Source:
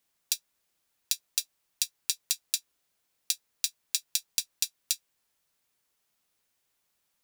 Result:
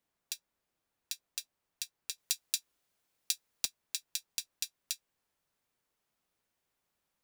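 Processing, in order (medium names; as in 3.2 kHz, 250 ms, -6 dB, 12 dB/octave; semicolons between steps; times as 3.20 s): treble shelf 2.1 kHz -12 dB, from 2.18 s -4 dB, from 3.65 s -9 dB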